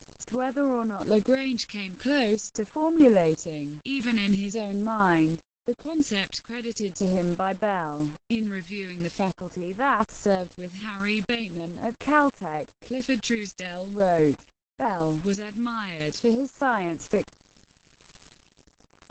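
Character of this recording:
phaser sweep stages 2, 0.43 Hz, lowest notch 610–4,800 Hz
a quantiser's noise floor 8 bits, dither none
chopped level 1 Hz, depth 60%, duty 35%
Opus

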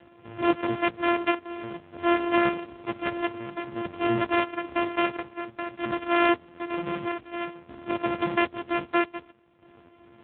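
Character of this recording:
a buzz of ramps at a fixed pitch in blocks of 128 samples
chopped level 0.52 Hz, depth 65%, duty 70%
AMR narrowband

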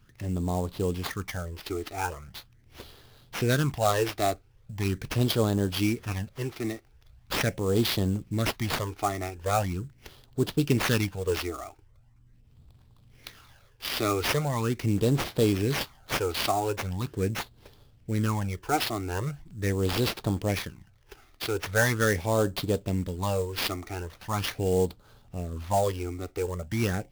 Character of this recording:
phaser sweep stages 12, 0.41 Hz, lowest notch 160–2,300 Hz
aliases and images of a low sample rate 8,000 Hz, jitter 20%

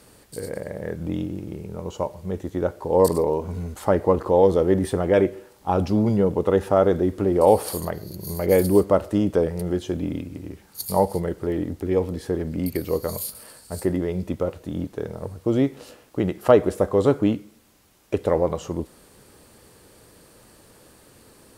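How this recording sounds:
background noise floor −53 dBFS
spectral slope −6.5 dB per octave

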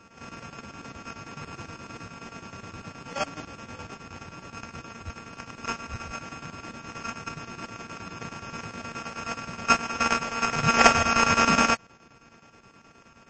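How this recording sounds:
a buzz of ramps at a fixed pitch in blocks of 32 samples
chopped level 9.5 Hz, depth 65%, duty 75%
aliases and images of a low sample rate 3,900 Hz, jitter 0%
MP3

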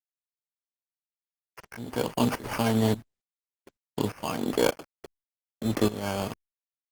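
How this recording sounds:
a quantiser's noise floor 8 bits, dither none
tremolo saw up 1.7 Hz, depth 85%
aliases and images of a low sample rate 3,800 Hz, jitter 0%
Opus

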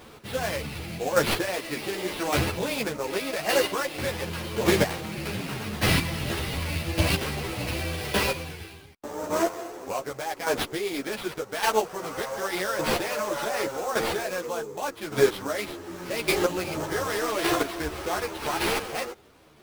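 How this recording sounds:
chopped level 0.86 Hz, depth 65%, duty 15%
aliases and images of a low sample rate 7,100 Hz, jitter 20%
a shimmering, thickened sound

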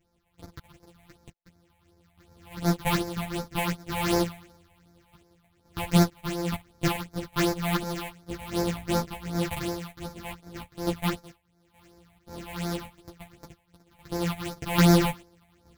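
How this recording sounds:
a buzz of ramps at a fixed pitch in blocks of 256 samples
phaser sweep stages 6, 2.7 Hz, lowest notch 350–2,900 Hz
sample-and-hold tremolo 2.3 Hz, depth 85%
a shimmering, thickened sound

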